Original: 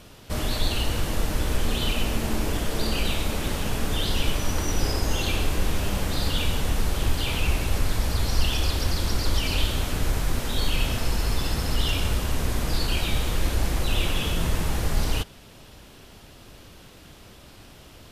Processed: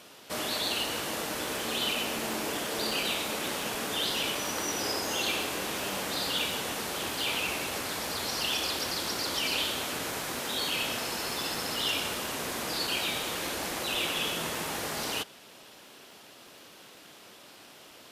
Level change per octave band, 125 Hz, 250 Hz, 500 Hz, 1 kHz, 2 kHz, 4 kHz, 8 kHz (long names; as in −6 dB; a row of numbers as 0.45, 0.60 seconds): −19.5, −7.0, −2.5, −1.0, 0.0, 0.0, 0.0 decibels